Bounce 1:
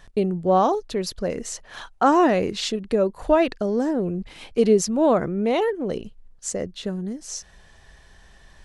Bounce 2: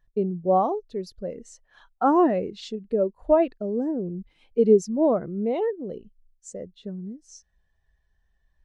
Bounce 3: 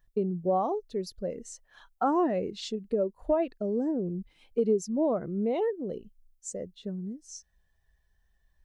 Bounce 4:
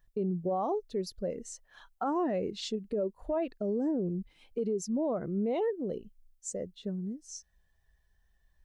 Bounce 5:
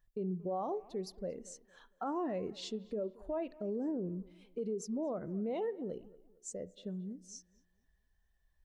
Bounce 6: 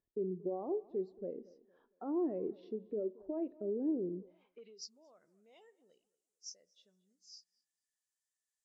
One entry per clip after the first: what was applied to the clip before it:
spectral expander 1.5:1
high shelf 6500 Hz +9 dB; compressor 2.5:1, threshold -24 dBFS, peak gain reduction 9 dB; gain -1 dB
limiter -24 dBFS, peak gain reduction 8.5 dB
tape echo 0.228 s, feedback 38%, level -19 dB, low-pass 2300 Hz; on a send at -18.5 dB: reverb RT60 0.50 s, pre-delay 32 ms; on the sum: gain -6 dB
nonlinear frequency compression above 3400 Hz 1.5:1; band-pass sweep 350 Hz -> 7200 Hz, 4.18–4.93; gain +4.5 dB

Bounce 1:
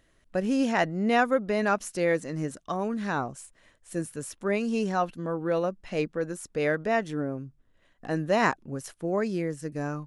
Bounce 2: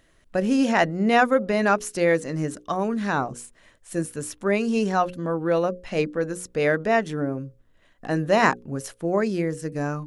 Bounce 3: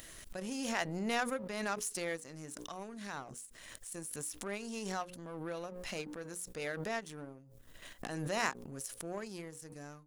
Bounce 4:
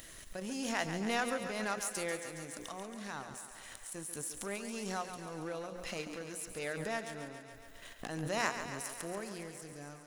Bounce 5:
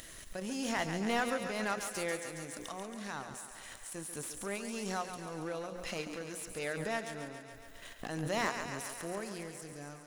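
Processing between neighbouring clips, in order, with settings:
notches 60/120/180/240/300/360/420/480/540 Hz; gain +5 dB
pre-emphasis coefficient 0.8; power-law curve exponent 1.4; backwards sustainer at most 29 dB/s; gain -1 dB
thinning echo 0.139 s, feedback 73%, high-pass 250 Hz, level -9 dB
slew limiter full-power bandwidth 77 Hz; gain +1.5 dB

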